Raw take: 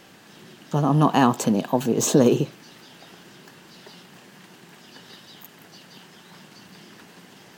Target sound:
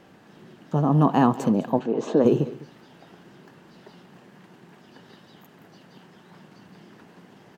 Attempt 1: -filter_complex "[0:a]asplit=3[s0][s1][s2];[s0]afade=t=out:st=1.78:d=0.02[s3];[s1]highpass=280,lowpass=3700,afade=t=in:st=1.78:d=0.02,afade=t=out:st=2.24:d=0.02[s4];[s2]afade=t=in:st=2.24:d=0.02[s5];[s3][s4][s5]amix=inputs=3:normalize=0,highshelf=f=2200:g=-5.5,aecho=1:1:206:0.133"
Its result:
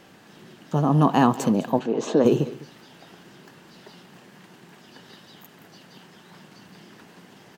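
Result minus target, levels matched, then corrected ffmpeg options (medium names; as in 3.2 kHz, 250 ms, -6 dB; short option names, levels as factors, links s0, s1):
4 kHz band +5.5 dB
-filter_complex "[0:a]asplit=3[s0][s1][s2];[s0]afade=t=out:st=1.78:d=0.02[s3];[s1]highpass=280,lowpass=3700,afade=t=in:st=1.78:d=0.02,afade=t=out:st=2.24:d=0.02[s4];[s2]afade=t=in:st=2.24:d=0.02[s5];[s3][s4][s5]amix=inputs=3:normalize=0,highshelf=f=2200:g=-14.5,aecho=1:1:206:0.133"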